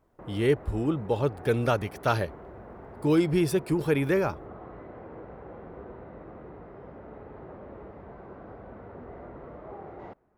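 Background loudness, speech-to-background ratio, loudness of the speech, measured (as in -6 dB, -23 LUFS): -45.0 LUFS, 18.0 dB, -27.0 LUFS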